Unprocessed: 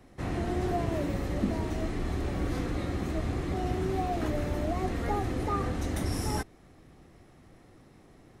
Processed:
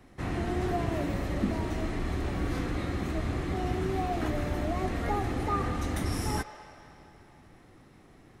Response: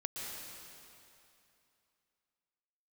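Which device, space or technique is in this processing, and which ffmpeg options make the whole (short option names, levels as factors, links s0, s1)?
filtered reverb send: -filter_complex "[0:a]asplit=2[s0][s1];[s1]highpass=f=530:w=0.5412,highpass=f=530:w=1.3066,lowpass=3800[s2];[1:a]atrim=start_sample=2205[s3];[s2][s3]afir=irnorm=-1:irlink=0,volume=0.422[s4];[s0][s4]amix=inputs=2:normalize=0"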